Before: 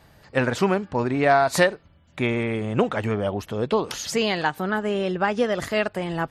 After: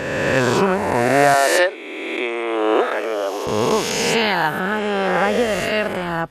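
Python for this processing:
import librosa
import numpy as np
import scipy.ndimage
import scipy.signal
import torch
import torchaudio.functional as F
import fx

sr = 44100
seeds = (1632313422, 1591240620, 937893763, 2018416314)

y = fx.spec_swells(x, sr, rise_s=2.06)
y = fx.ellip_highpass(y, sr, hz=310.0, order=4, stop_db=80, at=(1.34, 3.47))
y = F.gain(torch.from_numpy(y), 1.0).numpy()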